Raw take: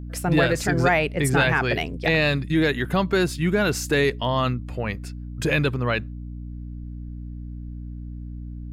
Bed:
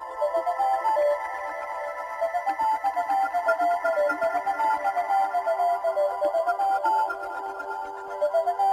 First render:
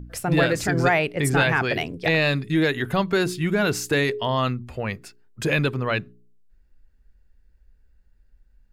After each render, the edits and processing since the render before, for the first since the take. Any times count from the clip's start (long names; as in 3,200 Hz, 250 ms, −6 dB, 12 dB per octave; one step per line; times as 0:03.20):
hum removal 60 Hz, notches 7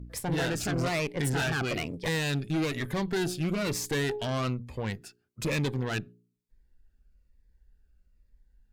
tube saturation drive 24 dB, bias 0.7
phaser whose notches keep moving one way falling 1.1 Hz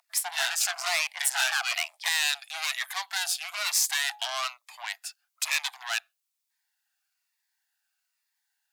Butterworth high-pass 680 Hz 96 dB per octave
high-shelf EQ 2,100 Hz +11.5 dB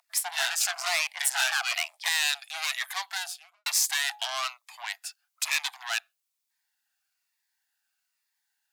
0:03.04–0:03.66: fade out and dull
0:04.24–0:05.90: Butterworth high-pass 600 Hz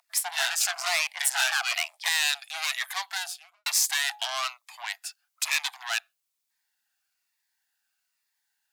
level +1 dB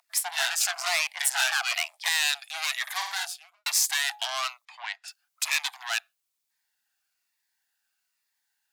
0:02.82–0:03.25: flutter between parallel walls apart 8.7 metres, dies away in 0.6 s
0:04.65–0:05.08: band-pass filter 530–4,000 Hz